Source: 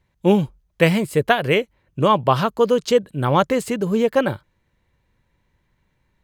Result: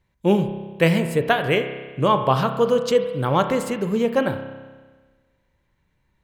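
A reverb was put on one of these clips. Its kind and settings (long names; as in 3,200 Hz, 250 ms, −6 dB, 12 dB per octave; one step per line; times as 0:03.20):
spring reverb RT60 1.4 s, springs 30 ms, chirp 45 ms, DRR 7.5 dB
level −2.5 dB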